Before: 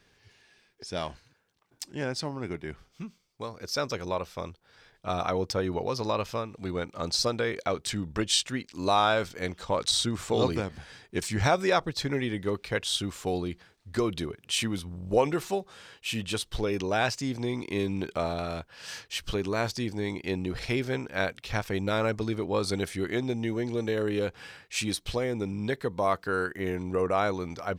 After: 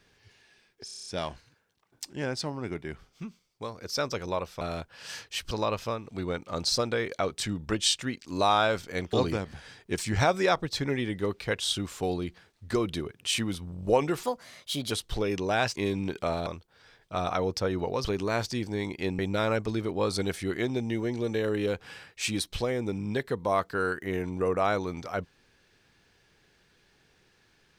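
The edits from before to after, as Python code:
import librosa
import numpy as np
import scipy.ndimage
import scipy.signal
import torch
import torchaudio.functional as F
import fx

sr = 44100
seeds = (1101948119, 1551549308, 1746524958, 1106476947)

y = fx.edit(x, sr, fx.stutter(start_s=0.85, slice_s=0.03, count=8),
    fx.swap(start_s=4.4, length_s=1.58, other_s=18.4, other_length_s=0.9),
    fx.cut(start_s=9.6, length_s=0.77),
    fx.speed_span(start_s=15.47, length_s=0.86, speed=1.27),
    fx.cut(start_s=17.18, length_s=0.51),
    fx.cut(start_s=20.44, length_s=1.28), tone=tone)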